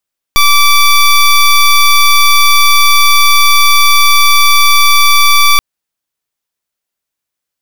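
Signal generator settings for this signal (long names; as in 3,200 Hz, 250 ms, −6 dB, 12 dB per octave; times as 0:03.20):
pulse wave 1,160 Hz, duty 15% −5.5 dBFS 5.23 s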